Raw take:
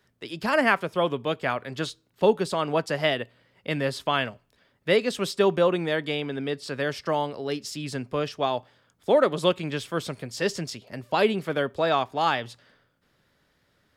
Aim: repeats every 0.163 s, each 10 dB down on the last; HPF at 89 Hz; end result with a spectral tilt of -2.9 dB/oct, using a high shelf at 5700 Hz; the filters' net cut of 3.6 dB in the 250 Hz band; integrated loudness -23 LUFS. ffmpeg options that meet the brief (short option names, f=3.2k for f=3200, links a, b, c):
-af "highpass=89,equalizer=f=250:t=o:g=-5,highshelf=f=5.7k:g=-5.5,aecho=1:1:163|326|489|652:0.316|0.101|0.0324|0.0104,volume=4dB"